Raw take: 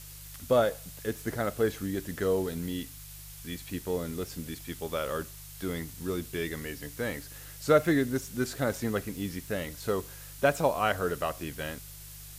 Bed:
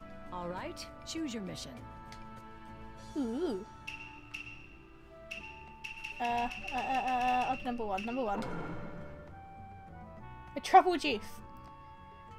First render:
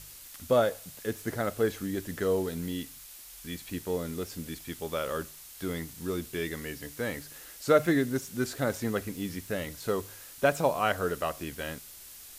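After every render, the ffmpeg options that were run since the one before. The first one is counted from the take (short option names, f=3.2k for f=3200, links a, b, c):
-af "bandreject=f=50:t=h:w=4,bandreject=f=100:t=h:w=4,bandreject=f=150:t=h:w=4"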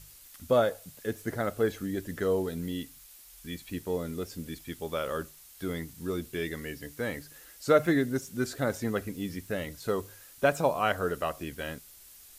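-af "afftdn=nr=6:nf=-48"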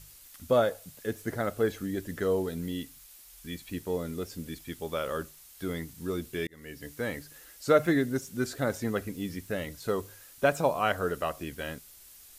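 -filter_complex "[0:a]asplit=2[a][b];[a]atrim=end=6.47,asetpts=PTS-STARTPTS,afade=t=out:st=6.466:d=0.004:c=hsin[c];[b]atrim=start=6.47,asetpts=PTS-STARTPTS,afade=t=in:d=0.41[d];[c][d]concat=n=2:v=0:a=1"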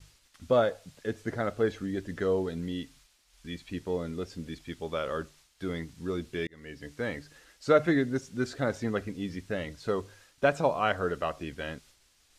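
-af "lowpass=5.6k,agate=range=-33dB:threshold=-54dB:ratio=3:detection=peak"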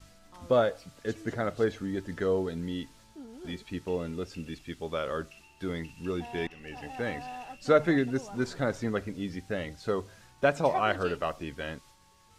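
-filter_complex "[1:a]volume=-11dB[a];[0:a][a]amix=inputs=2:normalize=0"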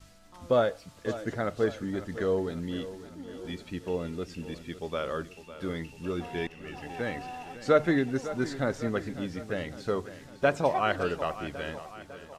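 -af "aecho=1:1:552|1104|1656|2208|2760|3312:0.2|0.112|0.0626|0.035|0.0196|0.011"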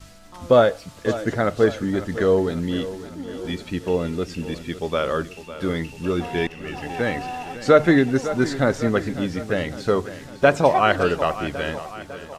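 -af "volume=9.5dB,alimiter=limit=-3dB:level=0:latency=1"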